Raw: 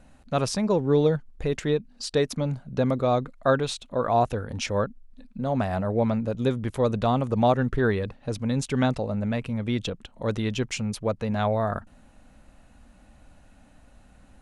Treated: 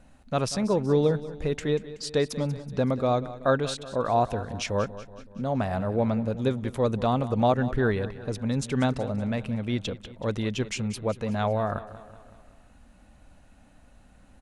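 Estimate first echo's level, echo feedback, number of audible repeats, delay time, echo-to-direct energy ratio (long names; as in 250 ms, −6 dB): −15.5 dB, 54%, 4, 188 ms, −14.0 dB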